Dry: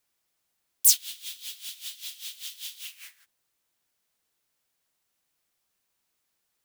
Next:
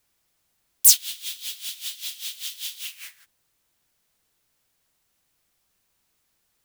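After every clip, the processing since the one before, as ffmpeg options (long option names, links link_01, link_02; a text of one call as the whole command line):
ffmpeg -i in.wav -filter_complex "[0:a]asplit=2[link_01][link_02];[link_02]acontrast=68,volume=1dB[link_03];[link_01][link_03]amix=inputs=2:normalize=0,lowshelf=frequency=150:gain=9,volume=-5dB" out.wav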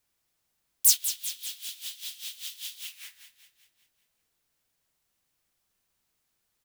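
ffmpeg -i in.wav -af "aecho=1:1:194|388|582|776|970|1164:0.282|0.149|0.0792|0.042|0.0222|0.0118,volume=-6dB" out.wav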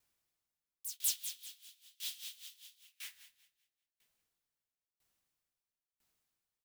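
ffmpeg -i in.wav -af "aeval=exprs='val(0)*pow(10,-26*if(lt(mod(1*n/s,1),2*abs(1)/1000),1-mod(1*n/s,1)/(2*abs(1)/1000),(mod(1*n/s,1)-2*abs(1)/1000)/(1-2*abs(1)/1000))/20)':channel_layout=same,volume=-1dB" out.wav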